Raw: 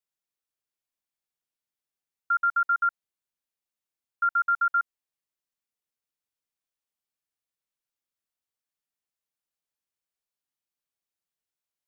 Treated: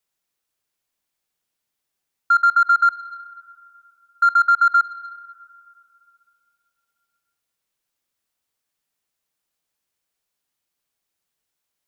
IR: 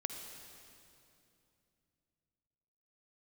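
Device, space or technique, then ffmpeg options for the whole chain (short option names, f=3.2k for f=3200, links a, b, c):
saturated reverb return: -filter_complex "[0:a]asplit=2[a][b];[1:a]atrim=start_sample=2205[c];[b][c]afir=irnorm=-1:irlink=0,asoftclip=type=tanh:threshold=-28.5dB,volume=-7dB[d];[a][d]amix=inputs=2:normalize=0,volume=7.5dB"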